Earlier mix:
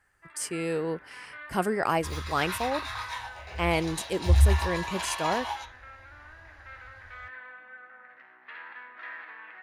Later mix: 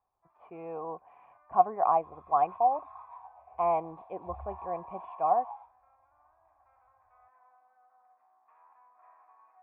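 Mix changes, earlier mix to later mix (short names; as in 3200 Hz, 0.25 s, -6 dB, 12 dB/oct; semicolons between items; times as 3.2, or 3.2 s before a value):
speech +11.5 dB; master: add vocal tract filter a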